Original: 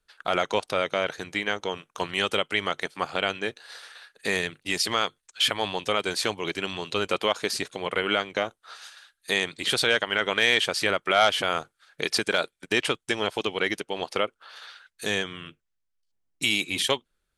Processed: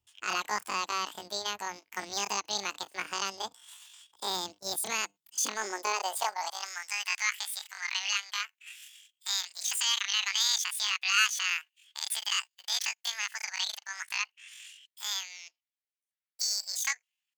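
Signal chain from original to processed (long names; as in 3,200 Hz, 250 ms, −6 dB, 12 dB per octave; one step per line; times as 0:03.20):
pitch shifter +12 semitones
high-pass filter sweep 82 Hz → 2,000 Hz, 0:04.66–0:06.97
level −6.5 dB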